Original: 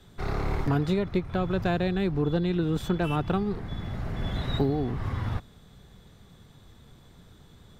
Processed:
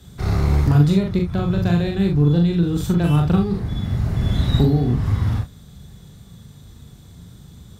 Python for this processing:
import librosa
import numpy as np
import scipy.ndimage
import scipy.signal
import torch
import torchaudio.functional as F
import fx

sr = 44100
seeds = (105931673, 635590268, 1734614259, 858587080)

p1 = scipy.signal.sosfilt(scipy.signal.butter(2, 50.0, 'highpass', fs=sr, output='sos'), x)
p2 = fx.bass_treble(p1, sr, bass_db=11, treble_db=10)
p3 = fx.rider(p2, sr, range_db=3, speed_s=2.0)
y = p3 + fx.room_early_taps(p3, sr, ms=(41, 69), db=(-3.0, -10.5), dry=0)